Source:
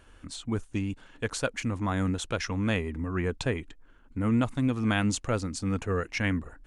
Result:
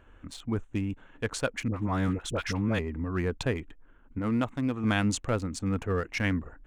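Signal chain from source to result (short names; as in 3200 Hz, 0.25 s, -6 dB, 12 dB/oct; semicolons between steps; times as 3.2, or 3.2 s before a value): Wiener smoothing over 9 samples; 1.68–2.79 dispersion highs, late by 63 ms, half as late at 840 Hz; 4.19–4.84 low shelf 150 Hz -8.5 dB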